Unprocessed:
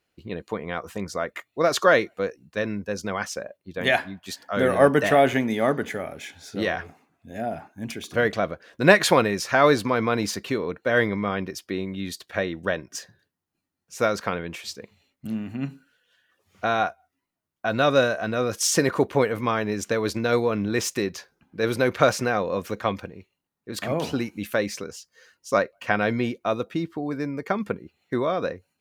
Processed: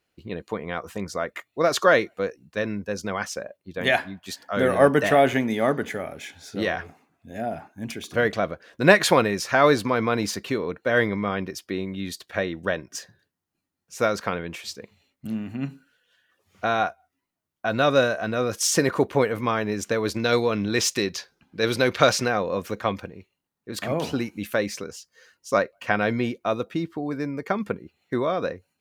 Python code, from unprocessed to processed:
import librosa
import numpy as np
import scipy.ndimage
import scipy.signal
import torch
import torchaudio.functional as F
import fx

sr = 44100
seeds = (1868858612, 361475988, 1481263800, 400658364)

y = fx.peak_eq(x, sr, hz=4200.0, db=7.5, octaves=1.6, at=(20.19, 22.28))